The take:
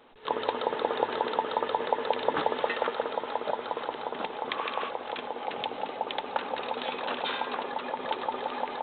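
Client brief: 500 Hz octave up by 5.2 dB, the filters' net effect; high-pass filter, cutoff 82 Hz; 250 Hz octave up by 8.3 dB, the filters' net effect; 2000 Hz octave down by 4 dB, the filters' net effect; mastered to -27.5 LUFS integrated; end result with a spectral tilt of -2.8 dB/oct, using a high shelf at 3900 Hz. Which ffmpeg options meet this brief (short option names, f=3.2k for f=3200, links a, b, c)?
-af "highpass=82,equalizer=f=250:t=o:g=9,equalizer=f=500:t=o:g=4,equalizer=f=2k:t=o:g=-3.5,highshelf=f=3.9k:g=-8.5,volume=1.5dB"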